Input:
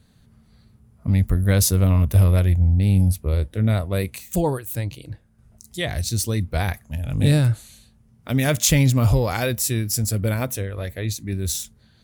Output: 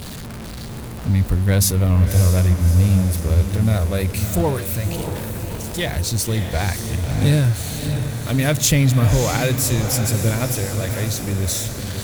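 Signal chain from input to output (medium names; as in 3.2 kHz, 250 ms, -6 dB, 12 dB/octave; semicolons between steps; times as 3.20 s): jump at every zero crossing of -26.5 dBFS; on a send: echo that smears into a reverb 610 ms, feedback 58%, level -7.5 dB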